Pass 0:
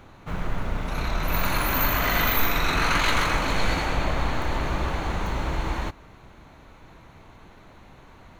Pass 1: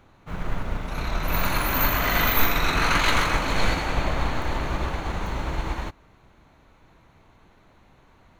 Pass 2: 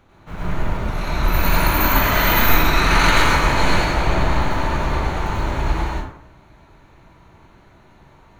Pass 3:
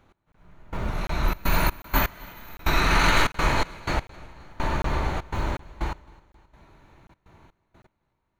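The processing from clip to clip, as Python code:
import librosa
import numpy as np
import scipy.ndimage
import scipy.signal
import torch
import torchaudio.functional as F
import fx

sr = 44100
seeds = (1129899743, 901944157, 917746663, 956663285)

y1 = fx.upward_expand(x, sr, threshold_db=-37.0, expansion=1.5)
y1 = y1 * librosa.db_to_amplitude(3.5)
y2 = fx.rev_plate(y1, sr, seeds[0], rt60_s=0.68, hf_ratio=0.6, predelay_ms=80, drr_db=-5.0)
y3 = fx.step_gate(y2, sr, bpm=124, pattern='x.....xxxxx.xx..', floor_db=-24.0, edge_ms=4.5)
y3 = fx.echo_feedback(y3, sr, ms=264, feedback_pct=59, wet_db=-23.5)
y3 = fx.buffer_crackle(y3, sr, first_s=0.32, period_s=0.75, block=1024, kind='zero')
y3 = y3 * librosa.db_to_amplitude(-5.0)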